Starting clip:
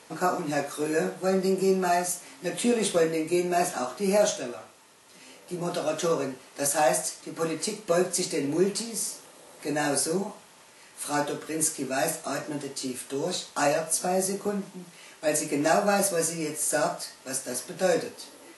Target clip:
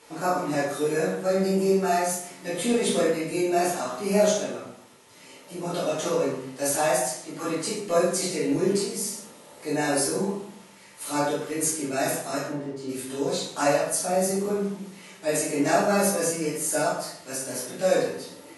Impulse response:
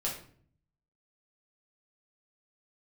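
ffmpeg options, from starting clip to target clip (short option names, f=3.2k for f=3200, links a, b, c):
-filter_complex "[0:a]asplit=3[a][b][c];[a]afade=t=out:st=12.48:d=0.02[d];[b]lowpass=f=1k:p=1,afade=t=in:st=12.48:d=0.02,afade=t=out:st=12.88:d=0.02[e];[c]afade=t=in:st=12.88:d=0.02[f];[d][e][f]amix=inputs=3:normalize=0[g];[1:a]atrim=start_sample=2205,asetrate=32634,aresample=44100[h];[g][h]afir=irnorm=-1:irlink=0,volume=-4.5dB"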